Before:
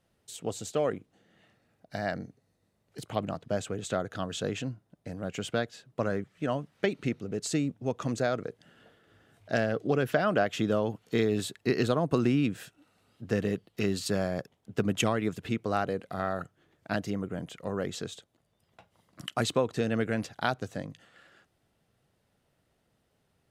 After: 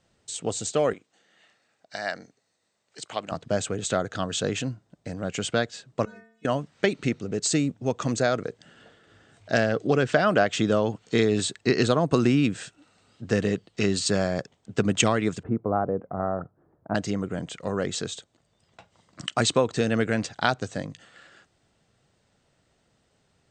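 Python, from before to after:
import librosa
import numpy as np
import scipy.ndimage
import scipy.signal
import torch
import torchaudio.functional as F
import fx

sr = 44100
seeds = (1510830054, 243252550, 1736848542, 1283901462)

y = fx.highpass(x, sr, hz=910.0, slope=6, at=(0.93, 3.32))
y = fx.stiff_resonator(y, sr, f0_hz=220.0, decay_s=0.66, stiffness=0.008, at=(6.05, 6.45))
y = fx.lowpass(y, sr, hz=1100.0, slope=24, at=(15.43, 16.95))
y = scipy.signal.sosfilt(scipy.signal.cheby1(10, 1.0, 8600.0, 'lowpass', fs=sr, output='sos'), y)
y = fx.high_shelf(y, sr, hz=4600.0, db=7.0)
y = F.gain(torch.from_numpy(y), 5.5).numpy()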